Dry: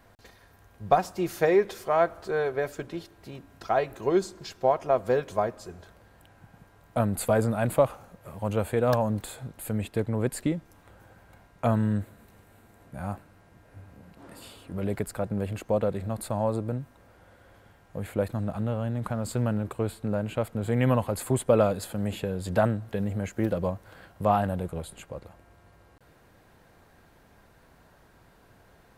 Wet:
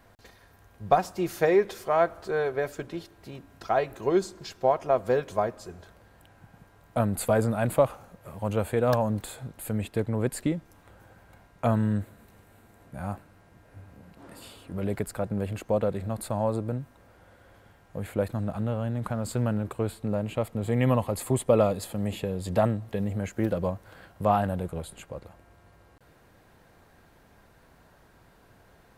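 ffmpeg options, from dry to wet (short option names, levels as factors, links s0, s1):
-filter_complex "[0:a]asettb=1/sr,asplit=3[s0][s1][s2];[s0]atrim=end=19.984[s3];[s1]atrim=start=19.98:end=23.17,asetpts=PTS-STARTPTS,afade=t=in:d=0.004:c=qsin,afade=t=out:st=3.186:d=0.004:c=qsin,bandreject=f=1500:w=6.5[s4];[s2]atrim=start=23.166[s5];[s3][s4]acrossfade=d=0.004:c1=hsin:c2=qsin[s6];[s6][s5]acrossfade=d=0.004:c1=qsin:c2=hsin"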